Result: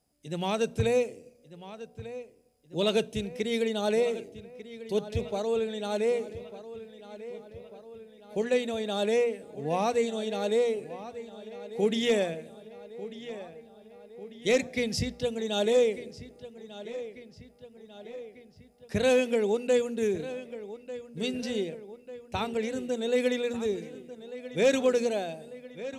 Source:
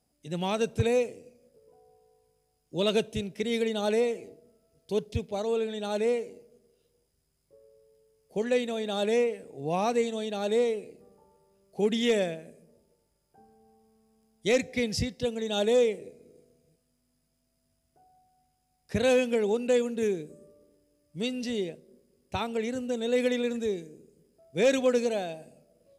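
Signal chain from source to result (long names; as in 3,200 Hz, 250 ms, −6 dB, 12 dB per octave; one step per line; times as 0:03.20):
mains-hum notches 60/120/180/240 Hz
feedback echo with a low-pass in the loop 1,195 ms, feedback 60%, low-pass 4,700 Hz, level −14.5 dB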